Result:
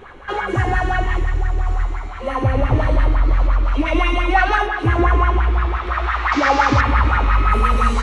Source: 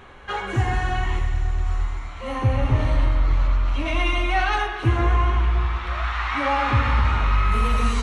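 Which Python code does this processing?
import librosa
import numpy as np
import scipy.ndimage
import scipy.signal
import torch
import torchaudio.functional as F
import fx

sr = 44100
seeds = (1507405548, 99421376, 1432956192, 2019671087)

y = fx.delta_mod(x, sr, bps=32000, step_db=-20.0, at=(6.32, 6.81))
y = fx.low_shelf(y, sr, hz=62.0, db=5.5)
y = fx.echo_wet_bandpass(y, sr, ms=343, feedback_pct=82, hz=550.0, wet_db=-17.0)
y = fx.bell_lfo(y, sr, hz=5.8, low_hz=290.0, high_hz=1800.0, db=14)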